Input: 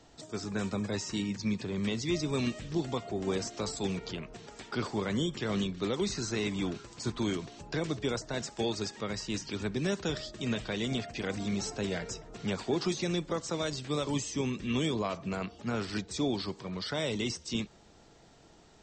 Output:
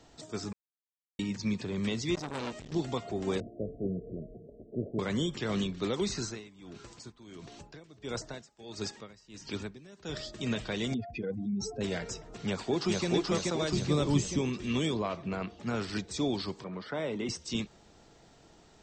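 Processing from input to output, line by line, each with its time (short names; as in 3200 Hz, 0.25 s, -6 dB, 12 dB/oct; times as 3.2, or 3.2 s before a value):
0.53–1.19 mute
2.15–2.72 core saturation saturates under 1600 Hz
3.4–4.99 steep low-pass 660 Hz 96 dB/oct
6.21–10.21 dB-linear tremolo 1.5 Hz, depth 22 dB
10.94–11.81 spectral contrast raised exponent 2.4
12.45–13.07 echo throw 0.43 s, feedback 55%, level -1 dB
13.72–14.39 low shelf 220 Hz +11 dB
14.97–15.6 Bessel low-pass 3700 Hz
16.64–17.29 three-band isolator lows -13 dB, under 150 Hz, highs -17 dB, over 2300 Hz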